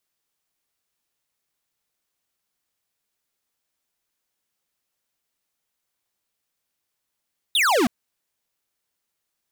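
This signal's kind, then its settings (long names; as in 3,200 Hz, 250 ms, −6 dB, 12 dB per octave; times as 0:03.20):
single falling chirp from 3,900 Hz, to 210 Hz, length 0.32 s square, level −18.5 dB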